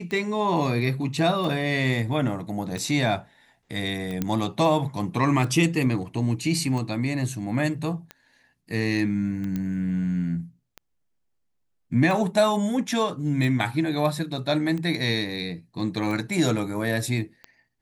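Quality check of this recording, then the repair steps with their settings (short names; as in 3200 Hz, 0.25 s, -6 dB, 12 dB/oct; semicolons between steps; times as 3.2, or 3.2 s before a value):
tick 45 rpm -21 dBFS
4.22 pop -12 dBFS
9.56 pop -17 dBFS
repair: de-click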